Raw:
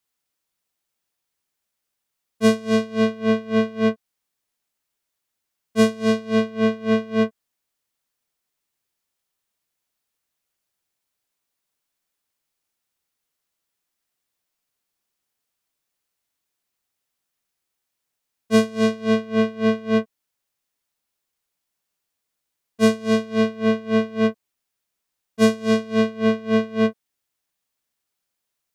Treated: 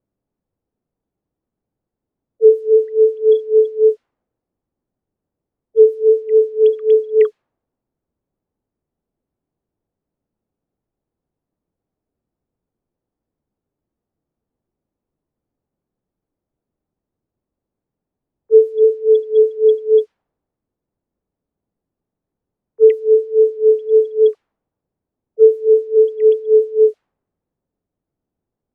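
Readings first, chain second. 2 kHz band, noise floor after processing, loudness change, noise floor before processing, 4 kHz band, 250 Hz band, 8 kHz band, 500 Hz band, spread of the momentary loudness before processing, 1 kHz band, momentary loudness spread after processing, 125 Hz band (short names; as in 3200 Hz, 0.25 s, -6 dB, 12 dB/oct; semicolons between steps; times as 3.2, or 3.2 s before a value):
under -15 dB, -84 dBFS, +7.5 dB, -81 dBFS, under -15 dB, under -20 dB, under -25 dB, +12.0 dB, 4 LU, under -25 dB, 4 LU, under -35 dB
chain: sine-wave speech; requantised 12-bit, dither triangular; low-pass opened by the level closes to 370 Hz, open at -14.5 dBFS; gain +7.5 dB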